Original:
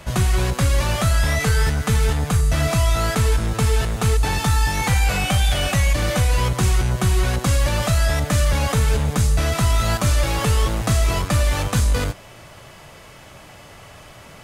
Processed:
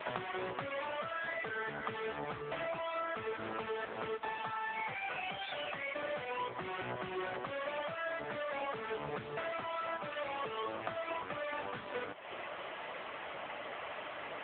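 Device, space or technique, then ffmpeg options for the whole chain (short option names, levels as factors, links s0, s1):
voicemail: -af "highpass=380,lowpass=3100,acompressor=threshold=0.01:ratio=12,volume=2" -ar 8000 -c:a libopencore_amrnb -b:a 6700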